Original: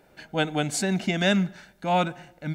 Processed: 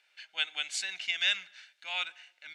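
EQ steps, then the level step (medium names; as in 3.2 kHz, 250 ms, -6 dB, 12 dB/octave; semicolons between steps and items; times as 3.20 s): resonant high-pass 2.7 kHz, resonance Q 1.6; low-pass 8 kHz 12 dB/octave; treble shelf 4.6 kHz -7.5 dB; 0.0 dB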